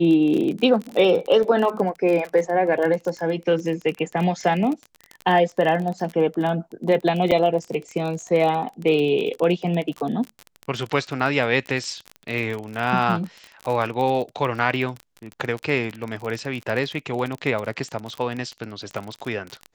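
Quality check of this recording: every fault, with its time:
crackle 29/s -26 dBFS
7.31–7.32 gap 6.2 ms

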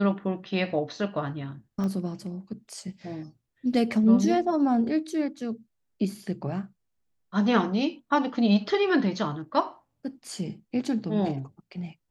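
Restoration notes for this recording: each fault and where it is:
1.84 pop -21 dBFS

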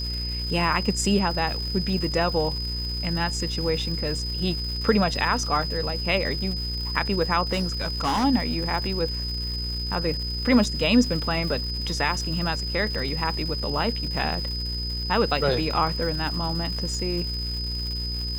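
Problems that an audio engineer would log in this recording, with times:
crackle 330/s -33 dBFS
hum 60 Hz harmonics 8 -31 dBFS
tone 5000 Hz -30 dBFS
7.52–8.25 clipped -20 dBFS

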